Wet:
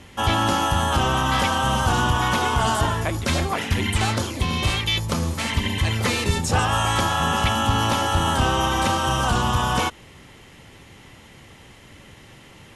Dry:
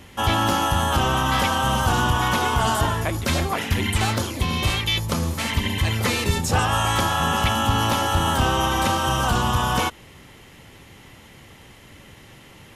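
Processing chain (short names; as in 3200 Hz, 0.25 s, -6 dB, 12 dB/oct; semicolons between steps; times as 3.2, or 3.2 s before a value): LPF 11000 Hz 24 dB/oct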